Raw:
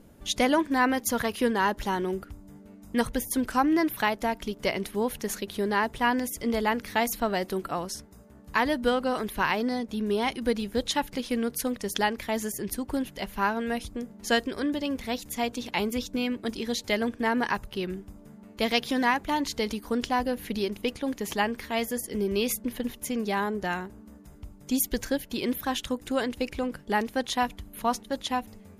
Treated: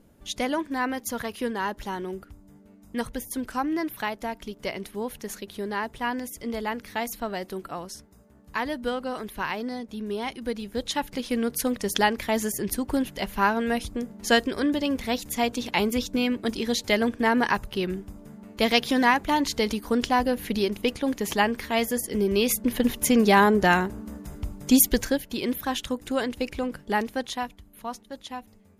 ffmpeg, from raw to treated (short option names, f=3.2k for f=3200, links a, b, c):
-af "volume=10.5dB,afade=t=in:st=10.58:d=1.25:silence=0.398107,afade=t=in:st=22.48:d=0.57:silence=0.473151,afade=t=out:st=24.57:d=0.65:silence=0.334965,afade=t=out:st=27.01:d=0.55:silence=0.354813"